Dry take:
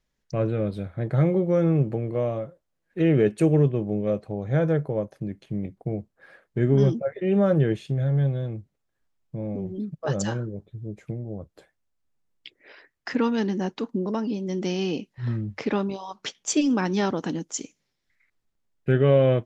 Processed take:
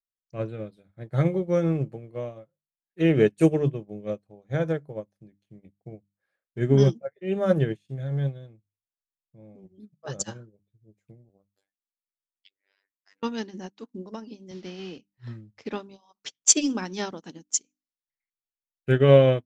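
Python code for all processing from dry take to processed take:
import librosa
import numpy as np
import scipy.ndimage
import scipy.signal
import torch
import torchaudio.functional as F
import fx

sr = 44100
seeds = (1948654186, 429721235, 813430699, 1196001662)

y = fx.chain(x, sr, fx.low_shelf(hz=170.0, db=-10.5),
    fx.over_compress(threshold_db=-38.0, ratio=-1.0),
    fx.robotise(hz=98.1), at=(11.29, 13.23))
y = fx.chain(y, sr, fx.delta_mod(bps=32000, step_db=-38.0),
    fx.air_absorb(metres=100.0),
    fx.band_squash(depth_pct=40), at=(14.51, 14.98))
y = fx.high_shelf(y, sr, hz=3600.0, db=11.0)
y = fx.hum_notches(y, sr, base_hz=50, count=6)
y = fx.upward_expand(y, sr, threshold_db=-39.0, expansion=2.5)
y = y * librosa.db_to_amplitude(4.5)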